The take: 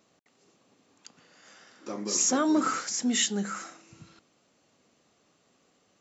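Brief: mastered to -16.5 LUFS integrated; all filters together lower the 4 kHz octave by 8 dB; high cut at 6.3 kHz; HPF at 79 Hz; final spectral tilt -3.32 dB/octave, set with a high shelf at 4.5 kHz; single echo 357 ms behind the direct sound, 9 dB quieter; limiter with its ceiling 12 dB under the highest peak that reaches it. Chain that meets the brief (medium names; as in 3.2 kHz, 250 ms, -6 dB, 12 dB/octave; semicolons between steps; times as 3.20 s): high-pass 79 Hz; low-pass 6.3 kHz; peaking EQ 4 kHz -6 dB; treble shelf 4.5 kHz -7.5 dB; peak limiter -26.5 dBFS; delay 357 ms -9 dB; trim +19 dB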